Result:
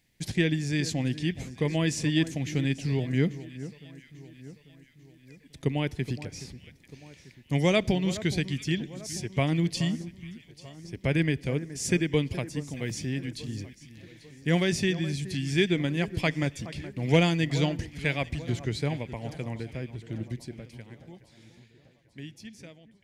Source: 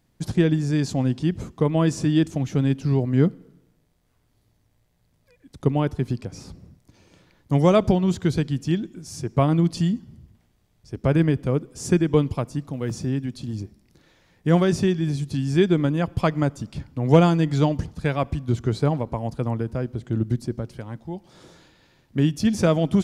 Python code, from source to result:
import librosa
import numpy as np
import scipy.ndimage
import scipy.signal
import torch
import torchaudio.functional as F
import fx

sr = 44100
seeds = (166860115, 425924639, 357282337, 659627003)

y = fx.fade_out_tail(x, sr, length_s=4.9)
y = fx.high_shelf_res(y, sr, hz=1600.0, db=7.5, q=3.0)
y = fx.echo_alternate(y, sr, ms=421, hz=1700.0, feedback_pct=67, wet_db=-14.0)
y = y * 10.0 ** (-6.5 / 20.0)